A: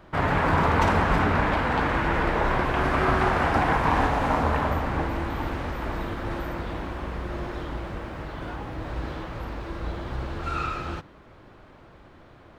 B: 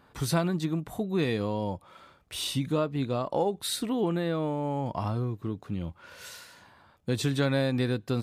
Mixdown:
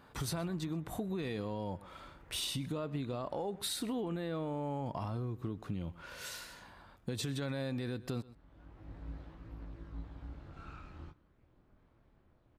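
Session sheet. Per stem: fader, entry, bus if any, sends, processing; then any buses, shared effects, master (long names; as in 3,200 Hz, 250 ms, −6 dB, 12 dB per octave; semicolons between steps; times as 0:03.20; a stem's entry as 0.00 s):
−18.0 dB, 0.10 s, no send, no echo send, low-shelf EQ 190 Hz +10.5 dB; multi-voice chorus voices 2, 0.21 Hz, delay 22 ms, depth 4 ms; amplitude modulation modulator 220 Hz, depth 50%; automatic ducking −16 dB, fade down 0.80 s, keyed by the second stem
0.0 dB, 0.00 s, no send, echo send −22 dB, brickwall limiter −23.5 dBFS, peak gain reduction 9 dB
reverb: not used
echo: single-tap delay 125 ms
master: downward compressor, threshold −34 dBFS, peak gain reduction 7.5 dB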